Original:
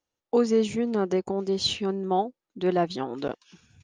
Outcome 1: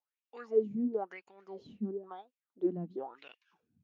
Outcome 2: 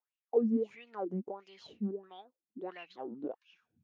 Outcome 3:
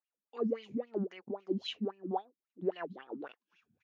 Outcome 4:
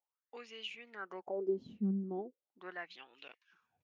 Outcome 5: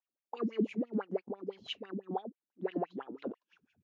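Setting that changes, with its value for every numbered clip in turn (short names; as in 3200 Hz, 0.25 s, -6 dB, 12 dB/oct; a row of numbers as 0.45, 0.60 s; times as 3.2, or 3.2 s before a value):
wah, rate: 0.98, 1.5, 3.7, 0.4, 6 Hz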